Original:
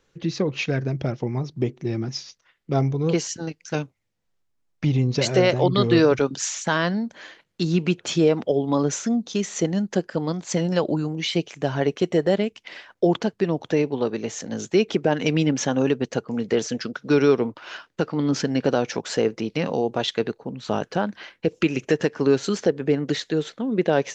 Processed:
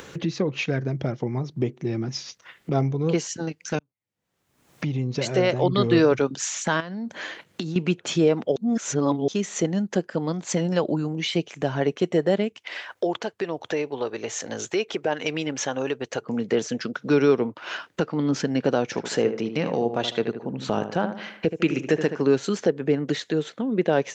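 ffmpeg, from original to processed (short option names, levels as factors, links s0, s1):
-filter_complex "[0:a]asettb=1/sr,asplit=3[s0][s1][s2];[s0]atrim=end=0.714[s3];[s1]atrim=start=0.71:end=1.48,asetpts=PTS-STARTPTS,afade=t=in:d=0.004:c=qsin,afade=t=out:st=0.766:d=0.004:c=qsin,bandreject=f=2600:w=12[s4];[s2]atrim=start=1.476[s5];[s3][s4]acrossfade=d=0.004:c1=hsin:c2=qsin[s6];[s6][s5]acrossfade=d=0.004:c1=qsin:c2=hsin,asettb=1/sr,asplit=3[s7][s8][s9];[s7]atrim=end=6.804[s10];[s8]atrim=start=6.8:end=7.76,asetpts=PTS-STARTPTS,afade=t=in:d=0.004:c=qsin,afade=t=out:st=0.956:d=0.004:c=qsin,acompressor=threshold=0.0355:ratio=16:attack=3.2:release=140:knee=1:detection=peak[s11];[s9]atrim=start=7.756[s12];[s10][s11]acrossfade=d=0.004:c1=hsin:c2=qsin[s13];[s13][s12]acrossfade=d=0.004:c1=qsin:c2=hsin,asettb=1/sr,asplit=3[s14][s15][s16];[s14]atrim=end=12.584[s17];[s15]atrim=start=12.58:end=16.22,asetpts=PTS-STARTPTS,afade=t=in:d=0.004:c=qsin,afade=t=out:st=3.636:d=0.004:c=qsin,equalizer=f=190:t=o:w=1.5:g=-14[s18];[s16]atrim=start=16.216[s19];[s17][s18]acrossfade=d=0.004:c1=hsin:c2=qsin[s20];[s20][s19]acrossfade=d=0.004:c1=qsin:c2=hsin,asettb=1/sr,asplit=3[s21][s22][s23];[s21]atrim=end=18.844[s24];[s22]atrim=start=18.84:end=22.22,asetpts=PTS-STARTPTS,afade=t=in:d=0.004:c=qsin,afade=t=out:st=3.376:d=0.004:c=qsin,asplit=2[s25][s26];[s26]adelay=76,lowpass=f=2000:p=1,volume=0.355,asplit=2[s27][s28];[s28]adelay=76,lowpass=f=2000:p=1,volume=0.37,asplit=2[s29][s30];[s30]adelay=76,lowpass=f=2000:p=1,volume=0.37,asplit=2[s31][s32];[s32]adelay=76,lowpass=f=2000:p=1,volume=0.37[s33];[s25][s27][s29][s31][s33]amix=inputs=5:normalize=0,atrim=end_sample=149058[s34];[s23]atrim=start=22.216[s35];[s24][s34]acrossfade=d=0.004:c1=hsin:c2=qsin[s36];[s36][s35]acrossfade=d=0.004:c1=qsin:c2=hsin,asplit=4[s37][s38][s39][s40];[s37]atrim=end=3.79,asetpts=PTS-STARTPTS,afade=t=out:st=3.786:d=0.004:c=hsin[s41];[s38]atrim=start=3.79:end=8.562,asetpts=PTS-STARTPTS,afade=t=in:d=2.02[s42];[s39]atrim=start=8.558:end=9.282,asetpts=PTS-STARTPTS,areverse[s43];[s40]atrim=start=9.278[s44];[s41][s42]concat=n=2:v=0:a=1[s45];[s45][s43]acrossfade=d=0.004:c1=hsin:c2=hsin[s46];[s46][s44]acrossfade=d=0.004:c1=hsin:c2=hsin,highpass=92,equalizer=f=4900:t=o:w=0.82:g=-3.5,acompressor=mode=upward:threshold=0.0794:ratio=2.5,volume=0.891"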